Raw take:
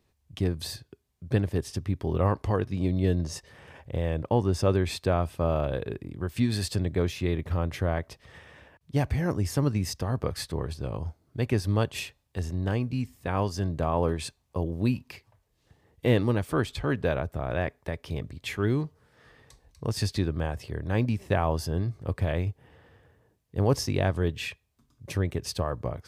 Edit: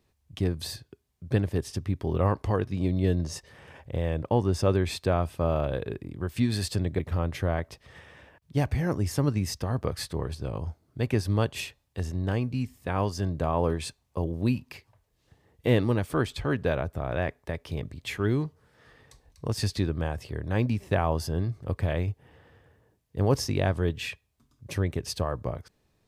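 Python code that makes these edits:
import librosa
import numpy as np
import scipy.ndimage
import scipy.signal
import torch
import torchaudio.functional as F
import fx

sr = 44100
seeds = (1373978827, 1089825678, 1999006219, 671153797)

y = fx.edit(x, sr, fx.cut(start_s=6.99, length_s=0.39), tone=tone)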